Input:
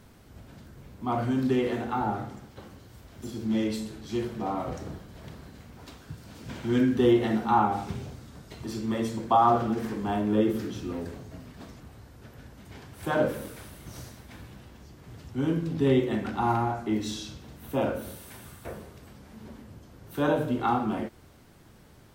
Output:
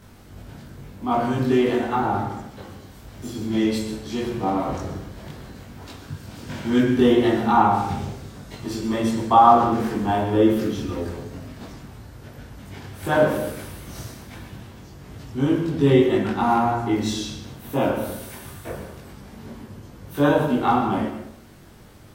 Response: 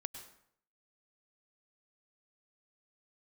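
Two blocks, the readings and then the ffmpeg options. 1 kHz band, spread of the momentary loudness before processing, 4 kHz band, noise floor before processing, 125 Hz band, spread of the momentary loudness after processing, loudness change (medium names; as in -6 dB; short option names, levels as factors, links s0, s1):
+7.5 dB, 23 LU, +7.0 dB, -53 dBFS, +5.5 dB, 22 LU, +6.5 dB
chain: -filter_complex "[0:a]asplit=2[s0][s1];[1:a]atrim=start_sample=2205,adelay=21[s2];[s1][s2]afir=irnorm=-1:irlink=0,volume=1.78[s3];[s0][s3]amix=inputs=2:normalize=0,volume=1.33"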